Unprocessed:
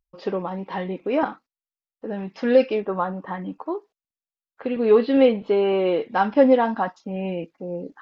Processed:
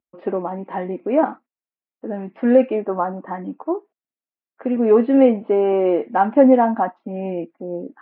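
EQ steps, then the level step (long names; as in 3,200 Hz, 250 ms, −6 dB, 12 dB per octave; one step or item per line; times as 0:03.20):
dynamic equaliser 800 Hz, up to +4 dB, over −35 dBFS, Q 1.7
loudspeaker in its box 120–2,400 Hz, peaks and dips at 240 Hz +8 dB, 340 Hz +7 dB, 660 Hz +6 dB
−1.5 dB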